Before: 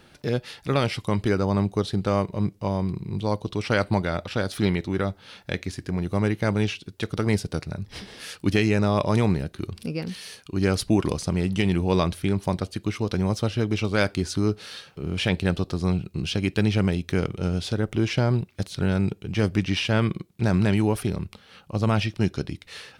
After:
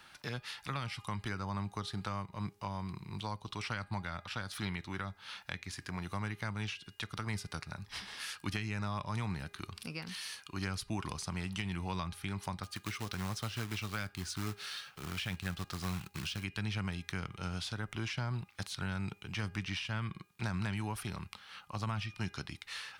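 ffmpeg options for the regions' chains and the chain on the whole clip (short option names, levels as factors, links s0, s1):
-filter_complex "[0:a]asettb=1/sr,asplit=3[s0][s1][s2];[s0]atrim=end=12.634[s3];[s1]atrim=start=12.63:end=16.44,asetpts=PTS-STARTPTS,afade=t=in:d=0.004:c=qsin,afade=t=out:st=3.806:d=0.004:c=qsin,equalizer=f=960:t=o:w=0.2:g=-7.5,acrusher=bits=4:mode=log:mix=0:aa=0.000001[s4];[s2]atrim=start=16.436[s5];[s3][s4]acrossfade=d=0.004:c1=hsin:c2=qsin[s6];[s6][s5]acrossfade=d=0.004:c1=qsin:c2=hsin,lowshelf=f=700:t=q:w=1.5:g=-11.5,bandreject=f=407.4:t=h:w=4,bandreject=f=814.8:t=h:w=4,bandreject=f=1222.2:t=h:w=4,bandreject=f=1629.6:t=h:w=4,bandreject=f=2037:t=h:w=4,bandreject=f=2444.4:t=h:w=4,bandreject=f=2851.8:t=h:w=4,acrossover=split=210[s7][s8];[s8]acompressor=threshold=0.0141:ratio=5[s9];[s7][s9]amix=inputs=2:normalize=0,volume=0.841"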